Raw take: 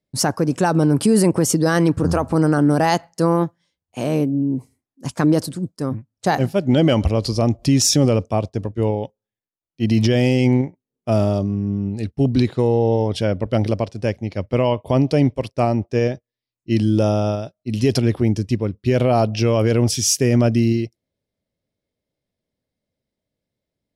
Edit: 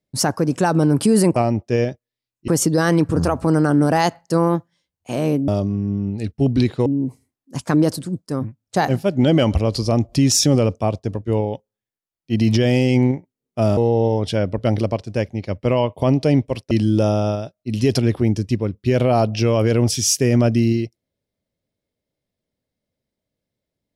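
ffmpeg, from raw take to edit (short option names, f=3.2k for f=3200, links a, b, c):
-filter_complex "[0:a]asplit=7[a][b][c][d][e][f][g];[a]atrim=end=1.362[h];[b]atrim=start=15.588:end=16.712[i];[c]atrim=start=1.358:end=4.362[j];[d]atrim=start=11.268:end=12.652[k];[e]atrim=start=4.358:end=11.272[l];[f]atrim=start=12.648:end=15.592[m];[g]atrim=start=16.708[n];[h][i]acrossfade=d=0.004:c1=hsin:c2=hsin[o];[o][j]acrossfade=d=0.004:c1=hsin:c2=hsin[p];[p][k]acrossfade=d=0.004:c1=hsin:c2=hsin[q];[q][l]acrossfade=d=0.004:c1=hsin:c2=hsin[r];[r][m]acrossfade=d=0.004:c1=hsin:c2=hsin[s];[s][n]acrossfade=d=0.004:c1=hsin:c2=hsin"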